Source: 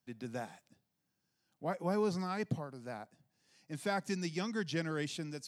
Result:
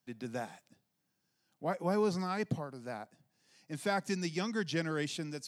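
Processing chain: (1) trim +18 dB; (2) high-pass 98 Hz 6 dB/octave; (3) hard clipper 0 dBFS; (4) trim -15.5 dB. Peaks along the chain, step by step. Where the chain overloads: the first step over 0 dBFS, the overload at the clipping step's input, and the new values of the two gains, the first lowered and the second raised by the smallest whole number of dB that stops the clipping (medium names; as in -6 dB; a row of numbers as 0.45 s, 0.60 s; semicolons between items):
-3.5 dBFS, -3.5 dBFS, -3.5 dBFS, -19.0 dBFS; nothing clips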